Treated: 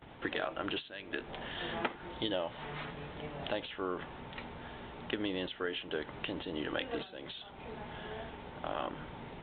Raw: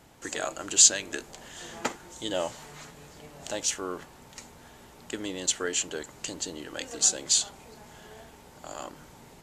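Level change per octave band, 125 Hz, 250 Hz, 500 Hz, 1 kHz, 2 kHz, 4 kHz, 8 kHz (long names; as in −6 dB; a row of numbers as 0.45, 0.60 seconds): +2.0 dB, −0.5 dB, −2.0 dB, −1.0 dB, −2.0 dB, −9.5 dB, below −40 dB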